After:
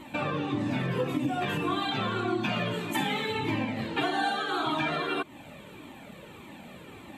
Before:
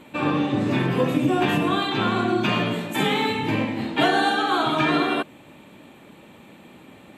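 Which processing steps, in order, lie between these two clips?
compressor 3:1, threshold -30 dBFS, peak gain reduction 11.5 dB; cascading flanger falling 1.7 Hz; gain +6 dB

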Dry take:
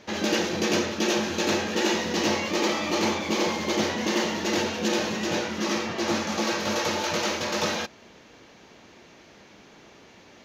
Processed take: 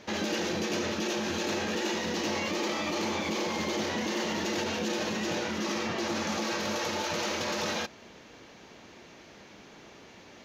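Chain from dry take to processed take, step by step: limiter -22.5 dBFS, peak gain reduction 8 dB

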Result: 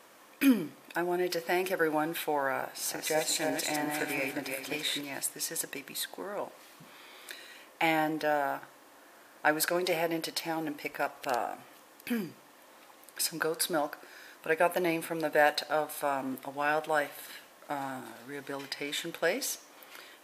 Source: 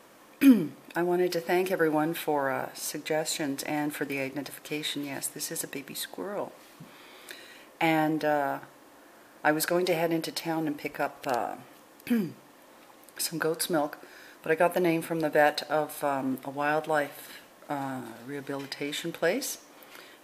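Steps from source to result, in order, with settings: 2.62–5.01 regenerating reverse delay 0.176 s, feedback 50%, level -3 dB; low shelf 390 Hz -9 dB

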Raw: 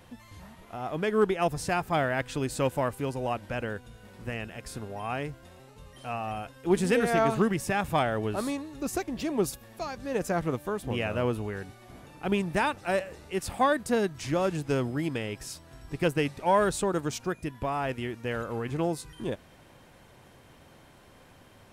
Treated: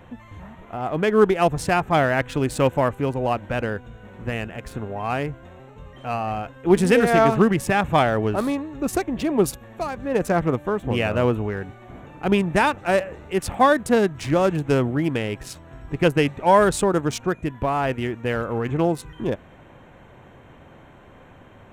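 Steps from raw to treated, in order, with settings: Wiener smoothing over 9 samples; gain +8 dB

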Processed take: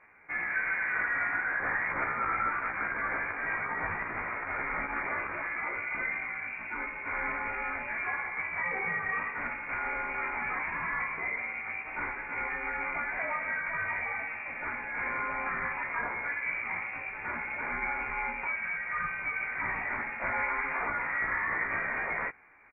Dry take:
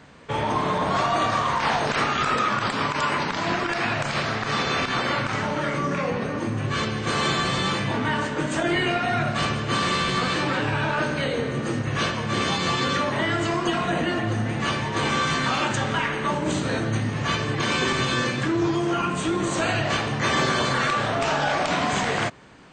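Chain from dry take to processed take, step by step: HPF 320 Hz 12 dB/oct; air absorption 320 m; doubler 16 ms -2.5 dB; inverted band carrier 2600 Hz; gain -7.5 dB

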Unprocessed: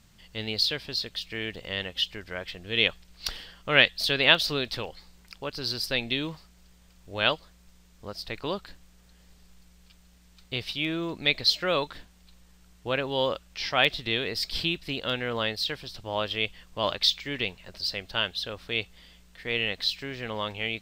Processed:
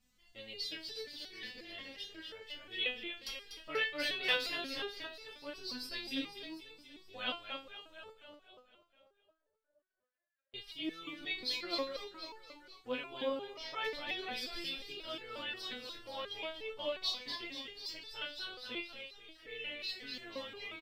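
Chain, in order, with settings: 8.1–10.54 auto-wah 610–2100 Hz, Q 18, down, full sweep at -38.5 dBFS; feedback echo 0.243 s, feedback 58%, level -6 dB; stepped resonator 5.6 Hz 250–440 Hz; gain +1 dB

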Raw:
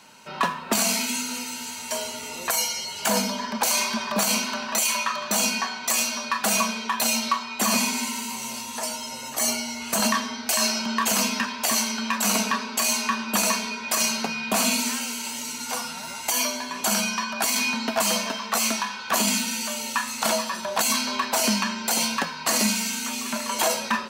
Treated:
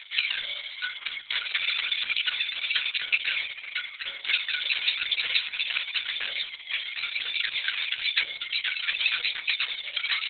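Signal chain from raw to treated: Chebyshev high-pass 1300 Hz, order 2; dynamic EQ 6500 Hz, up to +8 dB, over -40 dBFS, Q 1.2; reverse; upward compressor, threshold -32 dBFS; reverse; phaser 0.41 Hz, delay 4.2 ms, feedback 46%; early reflections 24 ms -17 dB, 43 ms -18 dB, 56 ms -17 dB; on a send at -10.5 dB: reverb RT60 0.50 s, pre-delay 7 ms; on the sum: speed mistake 33 rpm record played at 78 rpm; maximiser +9 dB; gain -2 dB; Opus 6 kbps 48000 Hz

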